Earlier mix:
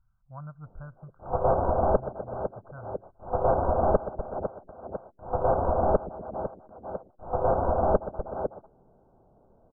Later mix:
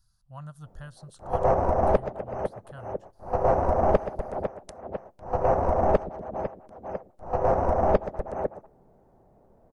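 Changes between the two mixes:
background: send on; master: remove brick-wall FIR low-pass 1600 Hz

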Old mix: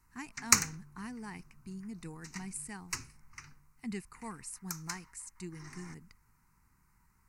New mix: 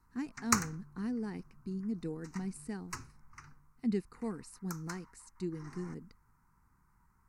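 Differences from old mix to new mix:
speech: add ten-band EQ 250 Hz +7 dB, 500 Hz +11 dB, 1000 Hz -10 dB, 4000 Hz +10 dB, 8000 Hz -4 dB; master: add resonant high shelf 1800 Hz -7.5 dB, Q 1.5

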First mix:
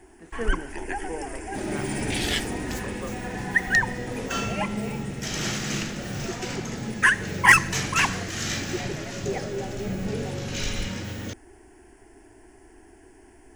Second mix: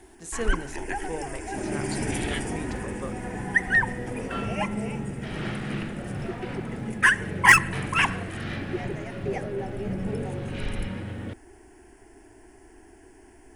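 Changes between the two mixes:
speech: remove Chebyshev band-pass 220–2000 Hz, order 2; second sound: add air absorption 450 m

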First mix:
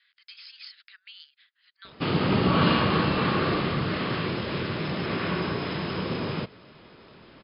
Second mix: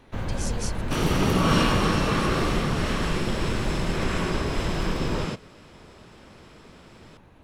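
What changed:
first sound: unmuted; second sound: entry -1.10 s; master: remove brick-wall FIR low-pass 5200 Hz

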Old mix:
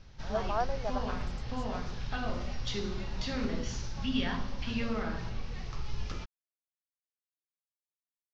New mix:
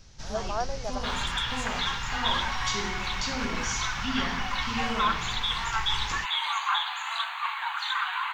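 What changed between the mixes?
second sound: unmuted; master: remove air absorption 200 m

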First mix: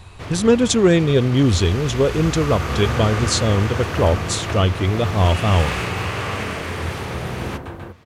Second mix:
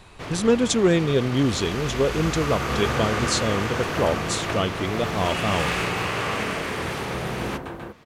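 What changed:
speech -4.0 dB; master: add bell 88 Hz -13 dB 0.63 oct

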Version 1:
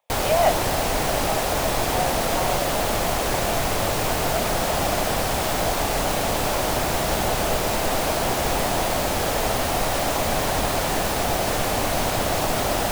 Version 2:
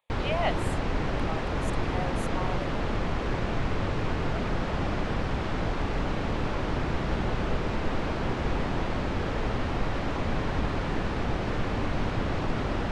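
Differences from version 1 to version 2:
background: add tape spacing loss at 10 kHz 36 dB; master: add bell 680 Hz -11 dB 0.9 oct

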